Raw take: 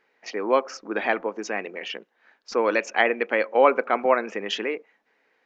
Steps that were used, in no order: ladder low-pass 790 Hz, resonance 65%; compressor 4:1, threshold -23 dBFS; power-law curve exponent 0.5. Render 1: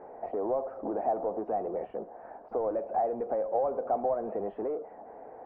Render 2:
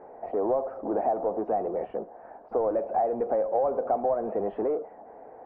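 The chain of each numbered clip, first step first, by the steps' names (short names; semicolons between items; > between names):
power-law curve > compressor > ladder low-pass; power-law curve > ladder low-pass > compressor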